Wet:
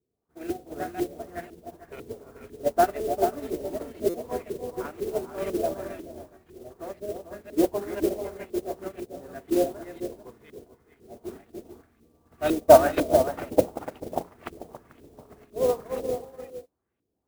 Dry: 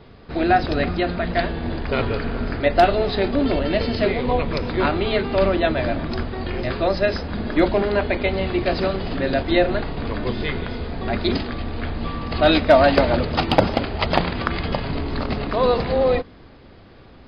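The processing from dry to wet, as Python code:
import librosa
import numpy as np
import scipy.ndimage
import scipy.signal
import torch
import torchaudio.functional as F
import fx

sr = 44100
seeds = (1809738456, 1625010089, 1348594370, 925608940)

y = scipy.signal.sosfilt(scipy.signal.butter(2, 57.0, 'highpass', fs=sr, output='sos'), x)
y = fx.peak_eq(y, sr, hz=370.0, db=4.0, octaves=0.77)
y = fx.notch(y, sr, hz=550.0, q=17.0)
y = fx.echo_multitap(y, sr, ms=(58, 295, 440), db=(-17.0, -5.5, -5.0))
y = fx.filter_lfo_lowpass(y, sr, shape='saw_up', hz=2.0, low_hz=340.0, high_hz=3000.0, q=1.7)
y = fx.mod_noise(y, sr, seeds[0], snr_db=15)
y = fx.dynamic_eq(y, sr, hz=510.0, q=1.1, threshold_db=-27.0, ratio=4.0, max_db=5)
y = fx.buffer_glitch(y, sr, at_s=(4.09,), block=256, repeats=8)
y = fx.upward_expand(y, sr, threshold_db=-24.0, expansion=2.5)
y = y * 10.0 ** (-5.5 / 20.0)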